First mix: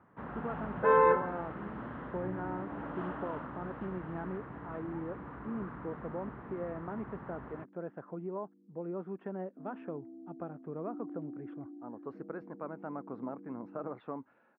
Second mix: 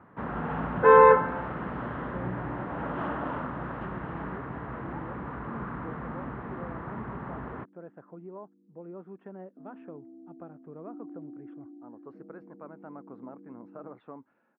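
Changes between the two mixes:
speech −4.5 dB
first sound +8.5 dB

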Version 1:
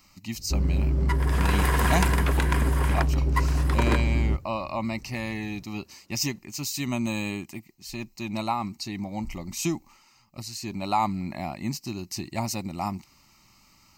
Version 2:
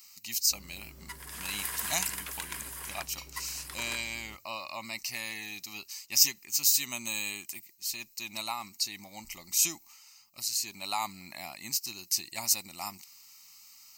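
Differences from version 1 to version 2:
speech +8.5 dB
master: add first-order pre-emphasis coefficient 0.97

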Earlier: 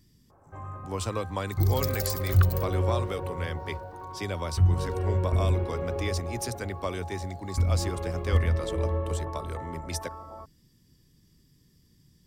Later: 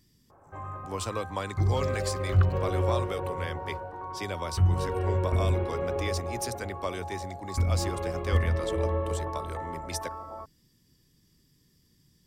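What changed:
first sound +3.5 dB
second sound: add head-to-tape spacing loss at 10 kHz 22 dB
master: add low-shelf EQ 270 Hz −5.5 dB

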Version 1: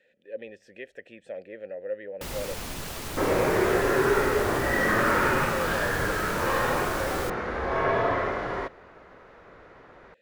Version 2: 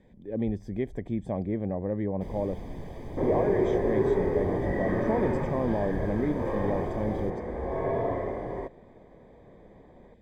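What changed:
speech: remove formant filter e
second sound: remove moving average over 5 samples
master: add moving average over 32 samples

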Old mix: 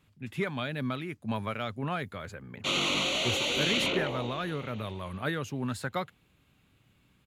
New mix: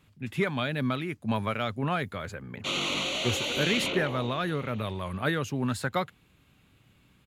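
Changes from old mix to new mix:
speech +4.0 dB
reverb: off

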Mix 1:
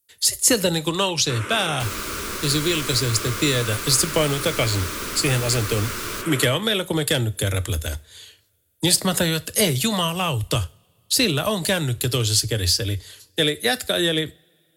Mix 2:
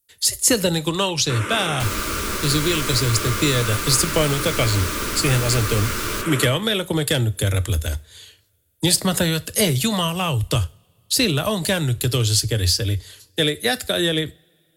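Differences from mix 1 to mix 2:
first sound: send +11.5 dB
second sound +3.0 dB
master: add low-shelf EQ 140 Hz +5.5 dB

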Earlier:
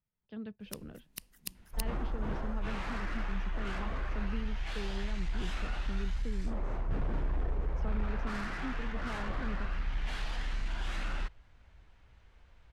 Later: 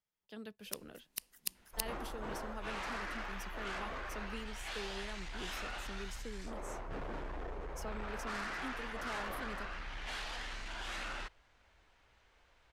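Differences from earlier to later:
speech: remove high-frequency loss of the air 240 metres
master: add bass and treble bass −13 dB, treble +3 dB

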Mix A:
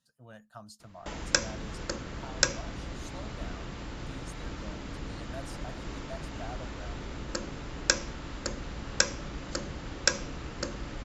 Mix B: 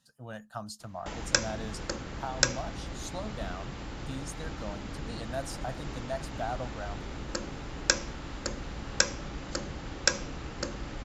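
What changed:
speech +8.0 dB
master: remove notch filter 800 Hz, Q 17

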